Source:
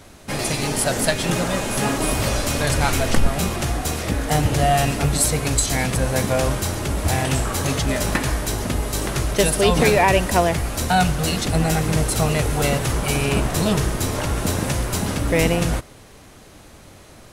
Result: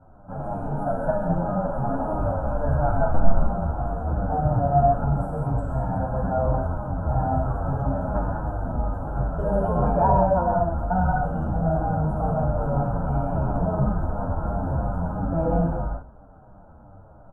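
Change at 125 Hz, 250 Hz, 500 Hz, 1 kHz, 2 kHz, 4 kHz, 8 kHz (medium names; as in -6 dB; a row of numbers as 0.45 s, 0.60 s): -2.5 dB, -4.0 dB, -3.0 dB, -1.0 dB, -15.5 dB, under -40 dB, under -40 dB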